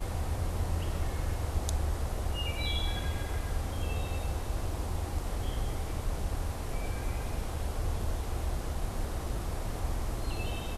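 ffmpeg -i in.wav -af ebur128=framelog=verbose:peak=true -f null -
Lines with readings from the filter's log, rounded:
Integrated loudness:
  I:         -35.2 LUFS
  Threshold: -45.2 LUFS
Loudness range:
  LRA:         2.4 LU
  Threshold: -55.3 LUFS
  LRA low:   -36.2 LUFS
  LRA high:  -33.8 LUFS
True peak:
  Peak:      -14.2 dBFS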